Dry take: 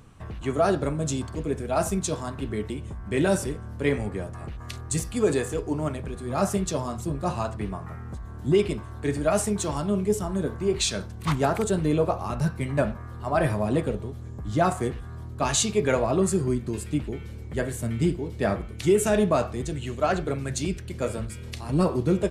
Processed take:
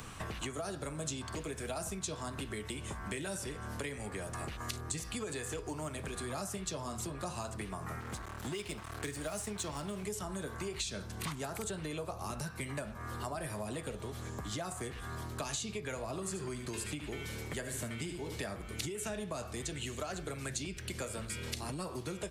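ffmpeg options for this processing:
ffmpeg -i in.wav -filter_complex "[0:a]asettb=1/sr,asplit=3[link_01][link_02][link_03];[link_01]atrim=end=8.004[link_04];[link_02]atrim=start=8:end=10.03,asetpts=PTS-STARTPTS,afade=type=in:duration=0.004:curve=qsin,afade=type=out:start_time=2.026:duration=0.004:curve=qsin,aeval=exprs='sgn(val(0))*max(abs(val(0))-0.00891,0)':channel_layout=same[link_05];[link_03]atrim=start=10.026[link_06];[link_04][link_05]acrossfade=duration=0.004:curve1=hsin:curve2=qsin[link_07];[link_07][link_06]acrossfade=duration=0.004:curve1=qsin:curve2=hsin,asettb=1/sr,asplit=3[link_08][link_09][link_10];[link_08]atrim=end=16.064[link_11];[link_09]atrim=start=16.06:end=18.36,asetpts=PTS-STARTPTS,afade=type=in:duration=0.004:curve=qsin,afade=type=out:start_time=2.296:duration=0.004:curve=qsin,aecho=1:1:73:0.316,atrim=end_sample=101430[link_12];[link_10]atrim=start=18.356[link_13];[link_11][link_12]acrossfade=duration=0.004:curve1=hsin:curve2=qsin[link_14];[link_14][link_13]acrossfade=duration=0.004:curve1=qsin:curve2=hsin,acompressor=threshold=-34dB:ratio=5,tiltshelf=frequency=790:gain=-6,acrossover=split=170|510|5400[link_15][link_16][link_17][link_18];[link_15]acompressor=threshold=-53dB:ratio=4[link_19];[link_16]acompressor=threshold=-52dB:ratio=4[link_20];[link_17]acompressor=threshold=-51dB:ratio=4[link_21];[link_18]acompressor=threshold=-52dB:ratio=4[link_22];[link_19][link_20][link_21][link_22]amix=inputs=4:normalize=0,volume=7.5dB" out.wav

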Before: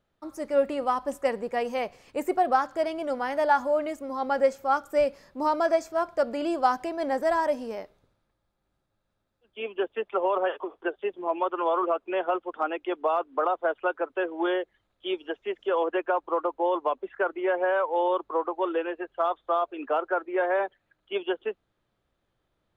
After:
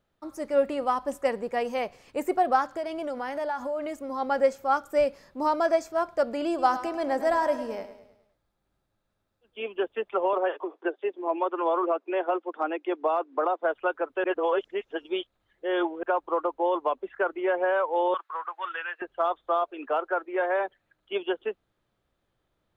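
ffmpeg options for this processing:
ffmpeg -i in.wav -filter_complex "[0:a]asettb=1/sr,asplit=3[link_01][link_02][link_03];[link_01]atrim=end=2.654[link_04];[link_02]atrim=start=2.65:end=4.05,asetpts=PTS-STARTPTS,afade=type=in:duration=0.004:curve=qsin,afade=type=out:start_time=1.396:duration=0.004:curve=qsin,acompressor=threshold=-28dB:ratio=4:attack=3.2:release=140:knee=1:detection=peak[link_05];[link_03]atrim=start=4.046[link_06];[link_04][link_05]acrossfade=duration=0.004:curve1=hsin:curve2=qsin[link_07];[link_07][link_06]acrossfade=duration=0.004:curve1=qsin:curve2=hsin,asettb=1/sr,asplit=3[link_08][link_09][link_10];[link_08]atrim=end=6.484[link_11];[link_09]atrim=start=6.48:end=9.68,asetpts=PTS-STARTPTS,afade=type=in:duration=0.004:curve=qsin,afade=type=out:start_time=3.196:duration=0.004:curve=qsin,aecho=1:1:104|208|312|416|520:0.251|0.118|0.0555|0.0261|0.0123,atrim=end_sample=141120[link_12];[link_10]atrim=start=9.676[link_13];[link_11][link_12]acrossfade=duration=0.004:curve1=hsin:curve2=qsin[link_14];[link_14][link_13]acrossfade=duration=0.004:curve1=qsin:curve2=hsin,asettb=1/sr,asplit=3[link_15][link_16][link_17];[link_15]atrim=end=10.334[link_18];[link_16]atrim=start=10.33:end=13.63,asetpts=PTS-STARTPTS,afade=type=in:duration=0.004:curve=qsin,afade=type=out:start_time=3.296:duration=0.004:curve=qsin,highpass=frequency=260:width=0.5412,highpass=frequency=260:width=1.3066,equalizer=frequency=310:width_type=q:width=4:gain=4,equalizer=frequency=1300:width_type=q:width=4:gain=-3,equalizer=frequency=3100:width_type=q:width=4:gain=-5,lowpass=frequency=6600:width=0.5412,lowpass=frequency=6600:width=1.3066[link_19];[link_17]atrim=start=13.626[link_20];[link_18][link_19]acrossfade=duration=0.004:curve1=hsin:curve2=qsin[link_21];[link_21][link_20]acrossfade=duration=0.004:curve1=qsin:curve2=hsin,asettb=1/sr,asplit=3[link_22][link_23][link_24];[link_22]atrim=end=18.144[link_25];[link_23]atrim=start=18.14:end=19.02,asetpts=PTS-STARTPTS,afade=type=in:duration=0.004:curve=qsin,afade=type=out:start_time=0.876:duration=0.004:curve=qsin,highpass=frequency=1500:width_type=q:width=2.3[link_26];[link_24]atrim=start=19.016[link_27];[link_25][link_26]acrossfade=duration=0.004:curve1=hsin:curve2=qsin[link_28];[link_28][link_27]acrossfade=duration=0.004:curve1=qsin:curve2=hsin,asettb=1/sr,asplit=3[link_29][link_30][link_31];[link_29]atrim=end=19.634[link_32];[link_30]atrim=start=19.63:end=20.65,asetpts=PTS-STARTPTS,afade=type=in:duration=0.004:curve=qsin,afade=type=out:start_time=1.016:duration=0.004:curve=qsin,equalizer=frequency=72:width_type=o:width=3:gain=-9.5[link_33];[link_31]atrim=start=20.646[link_34];[link_32][link_33]acrossfade=duration=0.004:curve1=hsin:curve2=qsin[link_35];[link_35][link_34]acrossfade=duration=0.004:curve1=qsin:curve2=hsin,asplit=3[link_36][link_37][link_38];[link_36]atrim=end=14.242[link_39];[link_37]atrim=start=14.238:end=16.032,asetpts=PTS-STARTPTS,areverse[link_40];[link_38]atrim=start=16.028[link_41];[link_39][link_40]acrossfade=duration=0.004:curve1=hsin:curve2=hsin[link_42];[link_42][link_41]acrossfade=duration=0.004:curve1=hsin:curve2=hsin" out.wav

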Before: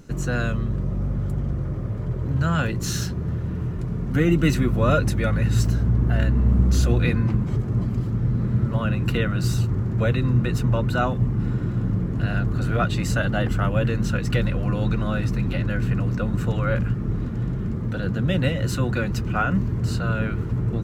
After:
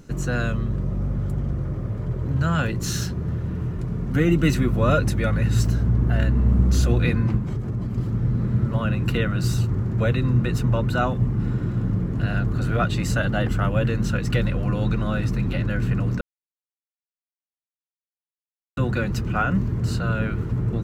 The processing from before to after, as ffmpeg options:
ffmpeg -i in.wav -filter_complex "[0:a]asettb=1/sr,asplit=3[link_01][link_02][link_03];[link_01]atrim=end=7.384[link_04];[link_02]atrim=start=7.38:end=7.98,asetpts=PTS-STARTPTS,afade=type=in:duration=0.004:curve=qsin,afade=type=out:start_time=0.596:duration=0.004:curve=qsin,acompressor=threshold=-23dB:ratio=3:attack=3.2:release=140:knee=1:detection=peak[link_05];[link_03]atrim=start=7.976[link_06];[link_04][link_05]acrossfade=duration=0.004:curve1=hsin:curve2=qsin[link_07];[link_07][link_06]acrossfade=duration=0.004:curve1=qsin:curve2=hsin,asplit=3[link_08][link_09][link_10];[link_08]atrim=end=16.21,asetpts=PTS-STARTPTS,afade=type=out:start_time=16.206:duration=0.004:curve=hsin[link_11];[link_09]atrim=start=16.21:end=18.77,asetpts=PTS-STARTPTS,volume=0[link_12];[link_10]atrim=start=18.77,asetpts=PTS-STARTPTS,afade=type=in:duration=0.004:curve=hsin[link_13];[link_11][link_12][link_13]concat=n=3:v=0:a=1" out.wav

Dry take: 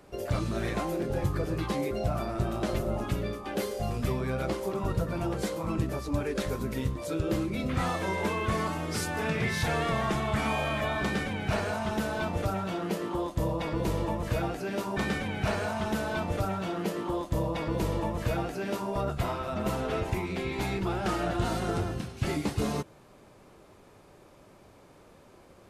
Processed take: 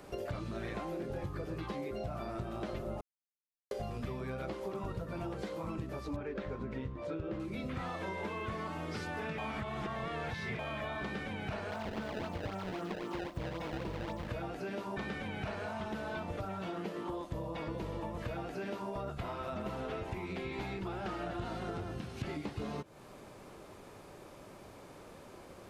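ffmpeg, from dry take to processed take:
ffmpeg -i in.wav -filter_complex "[0:a]asettb=1/sr,asplit=3[link_01][link_02][link_03];[link_01]atrim=end=6.164[link_04];[link_02]atrim=start=6.16:end=7.4,asetpts=PTS-STARTPTS,afade=type=in:duration=0.004:curve=qsin,afade=type=out:start_time=1.236:duration=0.004:curve=qsin,lowpass=2400[link_05];[link_03]atrim=start=7.396[link_06];[link_04][link_05]acrossfade=duration=0.004:curve1=hsin:curve2=qsin[link_07];[link_07][link_06]acrossfade=duration=0.004:curve1=qsin:curve2=hsin,asplit=3[link_08][link_09][link_10];[link_08]afade=type=out:start_time=11.7:duration=0.02[link_11];[link_09]acrusher=samples=23:mix=1:aa=0.000001:lfo=1:lforange=36.8:lforate=3.8,afade=type=in:start_time=11.7:duration=0.02,afade=type=out:start_time=14.27:duration=0.02[link_12];[link_10]afade=type=in:start_time=14.27:duration=0.02[link_13];[link_11][link_12][link_13]amix=inputs=3:normalize=0,asplit=5[link_14][link_15][link_16][link_17][link_18];[link_14]atrim=end=3.01,asetpts=PTS-STARTPTS,afade=type=out:start_time=3.006:duration=0.004:curve=hsin[link_19];[link_15]atrim=start=3.01:end=3.71,asetpts=PTS-STARTPTS,volume=0[link_20];[link_16]atrim=start=3.71:end=9.382,asetpts=PTS-STARTPTS,afade=type=in:duration=0.004:curve=hsin[link_21];[link_17]atrim=start=9.378:end=10.592,asetpts=PTS-STARTPTS,areverse[link_22];[link_18]atrim=start=10.588[link_23];[link_19][link_20][link_21]concat=n=3:v=0:a=1[link_24];[link_24][link_22]acrossfade=duration=0.004:curve1=hsin:curve2=hsin[link_25];[link_25][link_23]acrossfade=duration=0.004:curve1=hsin:curve2=hsin,acrossover=split=4600[link_26][link_27];[link_27]acompressor=threshold=-59dB:ratio=4:attack=1:release=60[link_28];[link_26][link_28]amix=inputs=2:normalize=0,lowshelf=frequency=150:gain=-3,acompressor=threshold=-41dB:ratio=5,volume=3.5dB" out.wav

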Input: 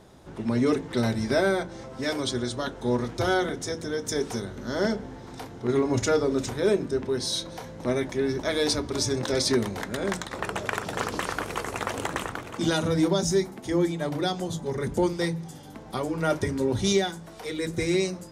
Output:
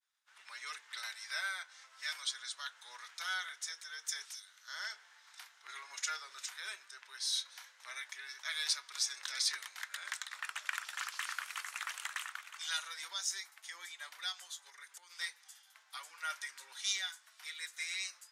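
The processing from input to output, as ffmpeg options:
ffmpeg -i in.wav -filter_complex "[0:a]asettb=1/sr,asplit=3[link_01][link_02][link_03];[link_01]atrim=end=4.254[link_04];[link_02]atrim=start=4.25:end=4.68,asetpts=PTS-STARTPTS,afade=type=in:duration=0.004:curve=qsin,afade=type=out:start_time=0.426:duration=0.004:curve=qsin,acrossover=split=190|3000[link_05][link_06][link_07];[link_06]acompressor=threshold=-44dB:ratio=6:attack=3.2:release=140:knee=2.83:detection=peak[link_08];[link_05][link_08][link_07]amix=inputs=3:normalize=0[link_09];[link_03]atrim=start=4.676[link_10];[link_04][link_09]acrossfade=duration=0.004:curve1=hsin:curve2=qsin[link_11];[link_11][link_10]acrossfade=duration=0.004:curve1=qsin:curve2=hsin,asplit=3[link_12][link_13][link_14];[link_12]afade=type=out:start_time=14.69:duration=0.02[link_15];[link_13]acompressor=threshold=-30dB:ratio=16:attack=3.2:release=140:knee=1:detection=peak,afade=type=in:start_time=14.69:duration=0.02,afade=type=out:start_time=15.1:duration=0.02[link_16];[link_14]afade=type=in:start_time=15.1:duration=0.02[link_17];[link_15][link_16][link_17]amix=inputs=3:normalize=0,agate=range=-33dB:threshold=-40dB:ratio=3:detection=peak,highpass=frequency=1400:width=0.5412,highpass=frequency=1400:width=1.3066,volume=-5.5dB" out.wav

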